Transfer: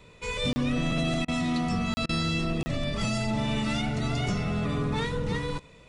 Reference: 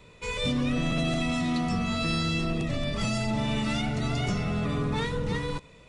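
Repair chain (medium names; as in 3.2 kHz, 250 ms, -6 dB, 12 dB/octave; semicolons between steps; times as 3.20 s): interpolate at 0.53/1.94/2.63 s, 30 ms; interpolate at 1.25/2.06 s, 30 ms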